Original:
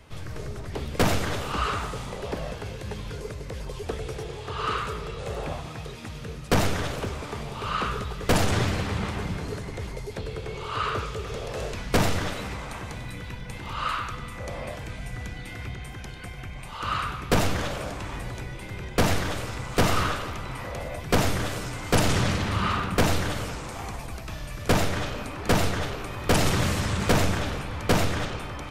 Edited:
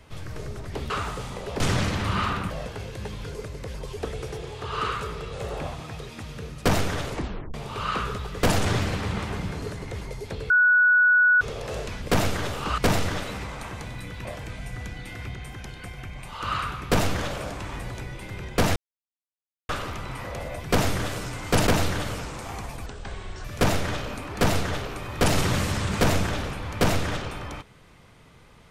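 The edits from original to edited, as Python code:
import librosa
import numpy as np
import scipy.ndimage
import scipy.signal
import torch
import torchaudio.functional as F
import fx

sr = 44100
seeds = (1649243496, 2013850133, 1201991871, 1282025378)

y = fx.edit(x, sr, fx.move(start_s=0.9, length_s=0.76, to_s=11.88),
    fx.tape_stop(start_s=6.93, length_s=0.47),
    fx.bleep(start_s=10.36, length_s=0.91, hz=1470.0, db=-14.5),
    fx.cut(start_s=13.35, length_s=1.3),
    fx.silence(start_s=19.16, length_s=0.93),
    fx.move(start_s=22.07, length_s=0.9, to_s=2.36),
    fx.speed_span(start_s=24.16, length_s=0.37, speed=0.63), tone=tone)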